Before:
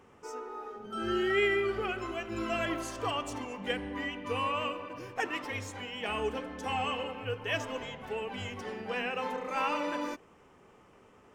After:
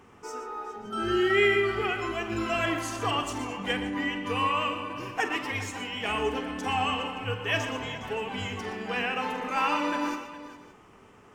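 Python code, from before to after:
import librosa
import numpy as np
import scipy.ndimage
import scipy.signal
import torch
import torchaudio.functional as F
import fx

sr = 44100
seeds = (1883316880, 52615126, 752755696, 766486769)

p1 = fx.peak_eq(x, sr, hz=540.0, db=-7.0, octaves=0.38)
p2 = p1 + fx.echo_multitap(p1, sr, ms=(47, 119, 143, 411, 569), db=(-11.5, -11.5, -17.0, -15.0, -20.0), dry=0)
y = p2 * 10.0 ** (5.0 / 20.0)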